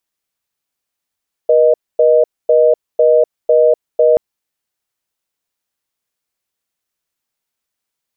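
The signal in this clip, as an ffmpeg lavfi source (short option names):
-f lavfi -i "aevalsrc='0.335*(sin(2*PI*480*t)+sin(2*PI*620*t))*clip(min(mod(t,0.5),0.25-mod(t,0.5))/0.005,0,1)':d=2.68:s=44100"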